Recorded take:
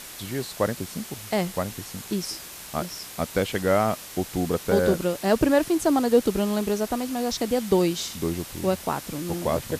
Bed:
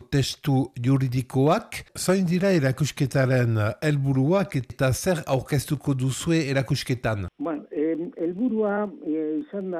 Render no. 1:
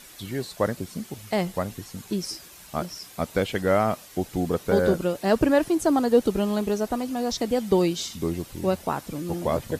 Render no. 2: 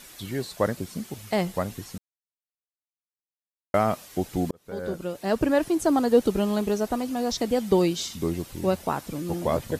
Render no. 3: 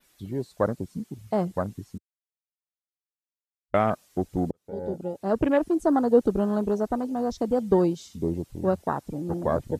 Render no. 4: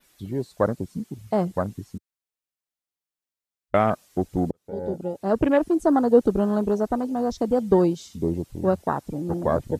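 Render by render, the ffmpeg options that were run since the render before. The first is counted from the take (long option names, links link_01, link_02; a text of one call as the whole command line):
ffmpeg -i in.wav -af "afftdn=noise_reduction=9:noise_floor=-41" out.wav
ffmpeg -i in.wav -filter_complex "[0:a]asplit=4[link_01][link_02][link_03][link_04];[link_01]atrim=end=1.98,asetpts=PTS-STARTPTS,afade=type=out:start_time=1.976:duration=0.004:curve=hsin[link_05];[link_02]atrim=start=1.98:end=3.74,asetpts=PTS-STARTPTS,volume=0[link_06];[link_03]atrim=start=3.74:end=4.51,asetpts=PTS-STARTPTS,afade=type=in:duration=0.004:curve=hsin,afade=type=out:start_time=0.766:duration=0.004:curve=hsin[link_07];[link_04]atrim=start=4.51,asetpts=PTS-STARTPTS,afade=type=in:duration=1.79:curve=qsin[link_08];[link_05][link_06][link_07][link_08]concat=n=4:v=0:a=1" out.wav
ffmpeg -i in.wav -af "afwtdn=0.0282,adynamicequalizer=threshold=0.00158:dfrequency=7400:dqfactor=0.88:tfrequency=7400:tqfactor=0.88:attack=5:release=100:ratio=0.375:range=2:mode=boostabove:tftype=bell" out.wav
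ffmpeg -i in.wav -af "volume=2.5dB" out.wav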